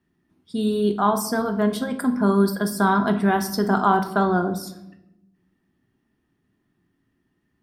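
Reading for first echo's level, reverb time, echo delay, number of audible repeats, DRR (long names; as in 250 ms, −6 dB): no echo audible, 0.90 s, no echo audible, no echo audible, 7.0 dB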